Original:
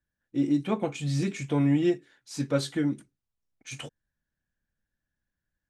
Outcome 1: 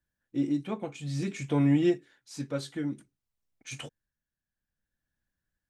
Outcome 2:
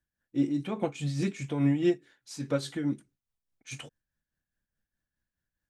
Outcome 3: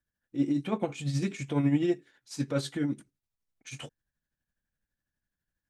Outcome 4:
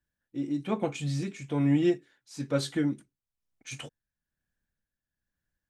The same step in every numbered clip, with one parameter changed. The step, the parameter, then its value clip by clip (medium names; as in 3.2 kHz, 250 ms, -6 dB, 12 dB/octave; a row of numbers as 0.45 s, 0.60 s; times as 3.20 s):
tremolo, rate: 0.57 Hz, 4.8 Hz, 12 Hz, 1.1 Hz